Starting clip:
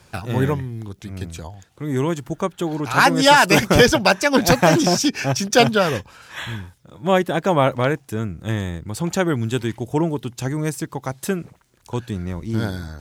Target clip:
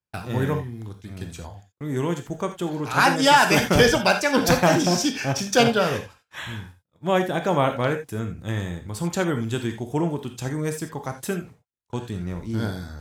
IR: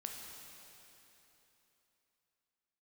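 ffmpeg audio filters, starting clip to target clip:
-filter_complex "[0:a]agate=range=-37dB:threshold=-39dB:ratio=16:detection=peak[link_01];[1:a]atrim=start_sample=2205,afade=type=out:start_time=0.14:duration=0.01,atrim=end_sample=6615[link_02];[link_01][link_02]afir=irnorm=-1:irlink=0"

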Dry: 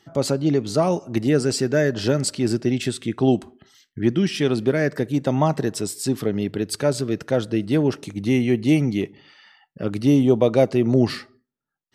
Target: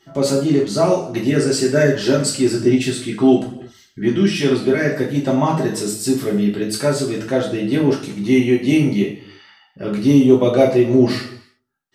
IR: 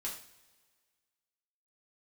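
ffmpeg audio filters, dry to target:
-filter_complex "[1:a]atrim=start_sample=2205,afade=type=out:start_time=0.42:duration=0.01,atrim=end_sample=18963[link_01];[0:a][link_01]afir=irnorm=-1:irlink=0,asplit=3[link_02][link_03][link_04];[link_02]afade=type=out:start_time=1.73:duration=0.02[link_05];[link_03]aphaser=in_gain=1:out_gain=1:delay=4.3:decay=0.26:speed=1.1:type=sinusoidal,afade=type=in:start_time=1.73:duration=0.02,afade=type=out:start_time=4.3:duration=0.02[link_06];[link_04]afade=type=in:start_time=4.3:duration=0.02[link_07];[link_05][link_06][link_07]amix=inputs=3:normalize=0,volume=4.5dB"

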